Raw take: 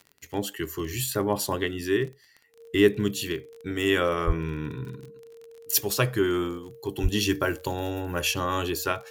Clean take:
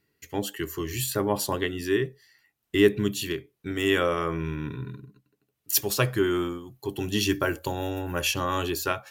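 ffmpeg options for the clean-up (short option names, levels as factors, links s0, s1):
-filter_complex "[0:a]adeclick=t=4,bandreject=f=460:w=30,asplit=3[s0][s1][s2];[s0]afade=t=out:st=4.26:d=0.02[s3];[s1]highpass=f=140:w=0.5412,highpass=f=140:w=1.3066,afade=t=in:st=4.26:d=0.02,afade=t=out:st=4.38:d=0.02[s4];[s2]afade=t=in:st=4.38:d=0.02[s5];[s3][s4][s5]amix=inputs=3:normalize=0,asplit=3[s6][s7][s8];[s6]afade=t=out:st=7.02:d=0.02[s9];[s7]highpass=f=140:w=0.5412,highpass=f=140:w=1.3066,afade=t=in:st=7.02:d=0.02,afade=t=out:st=7.14:d=0.02[s10];[s8]afade=t=in:st=7.14:d=0.02[s11];[s9][s10][s11]amix=inputs=3:normalize=0"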